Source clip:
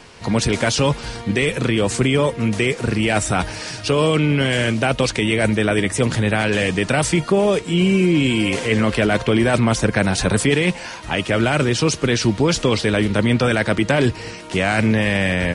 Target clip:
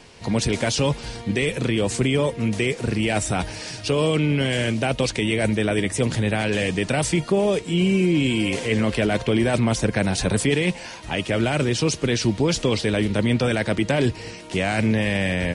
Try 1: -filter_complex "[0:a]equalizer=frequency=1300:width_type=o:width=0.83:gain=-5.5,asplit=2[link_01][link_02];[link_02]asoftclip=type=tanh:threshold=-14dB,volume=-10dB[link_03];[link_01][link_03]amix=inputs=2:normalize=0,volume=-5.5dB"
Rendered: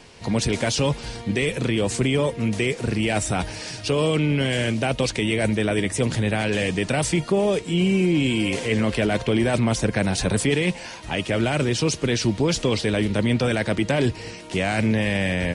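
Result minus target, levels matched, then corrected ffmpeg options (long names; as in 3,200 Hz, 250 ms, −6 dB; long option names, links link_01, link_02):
soft clipping: distortion +16 dB
-filter_complex "[0:a]equalizer=frequency=1300:width_type=o:width=0.83:gain=-5.5,asplit=2[link_01][link_02];[link_02]asoftclip=type=tanh:threshold=-3.5dB,volume=-10dB[link_03];[link_01][link_03]amix=inputs=2:normalize=0,volume=-5.5dB"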